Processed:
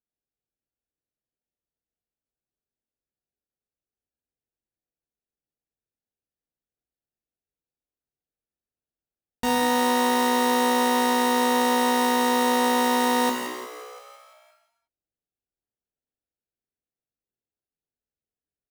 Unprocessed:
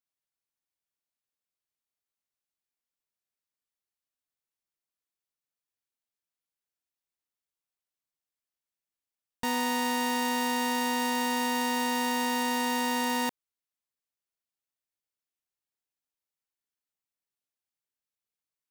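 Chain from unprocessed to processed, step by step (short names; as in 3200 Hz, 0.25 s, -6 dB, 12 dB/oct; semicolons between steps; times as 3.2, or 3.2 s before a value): Wiener smoothing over 41 samples; frequency-shifting echo 0.173 s, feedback 64%, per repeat +62 Hz, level -14 dB; non-linear reverb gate 0.39 s falling, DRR 0 dB; gain +5 dB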